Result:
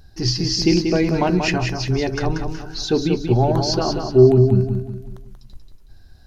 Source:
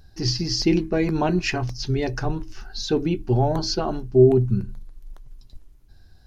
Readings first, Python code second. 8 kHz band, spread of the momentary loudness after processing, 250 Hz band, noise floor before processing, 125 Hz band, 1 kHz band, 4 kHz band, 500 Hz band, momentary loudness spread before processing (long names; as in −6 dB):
can't be measured, 13 LU, +4.0 dB, −50 dBFS, +4.5 dB, +4.0 dB, +4.0 dB, +3.5 dB, 12 LU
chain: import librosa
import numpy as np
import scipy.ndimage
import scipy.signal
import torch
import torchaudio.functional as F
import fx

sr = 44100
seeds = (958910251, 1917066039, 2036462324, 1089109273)

y = fx.echo_feedback(x, sr, ms=185, feedback_pct=40, wet_db=-6.0)
y = y * librosa.db_to_amplitude(3.0)